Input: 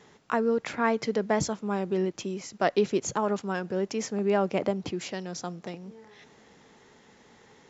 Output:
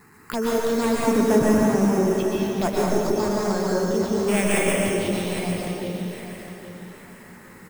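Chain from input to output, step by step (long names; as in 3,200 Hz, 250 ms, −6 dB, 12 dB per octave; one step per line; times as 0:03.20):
wavefolder on the positive side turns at −20.5 dBFS
0:01.05–0:01.86: parametric band 270 Hz +12.5 dB 0.7 octaves
0:02.74–0:03.20: inverse Chebyshev band-stop filter 1,100–3,000 Hz
in parallel at +2.5 dB: downward compressor, threshold −40 dBFS, peak gain reduction 19 dB
0:04.28–0:04.74: on the sum: high shelf with overshoot 1,800 Hz +9.5 dB, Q 3
sample-rate reduction 5,900 Hz, jitter 0%
phaser swept by the level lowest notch 530 Hz, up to 4,000 Hz, full sweep at −22 dBFS
on a send: repeating echo 809 ms, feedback 30%, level −11 dB
on the sum: dense smooth reverb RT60 1.8 s, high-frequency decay 1×, pre-delay 110 ms, DRR −4.5 dB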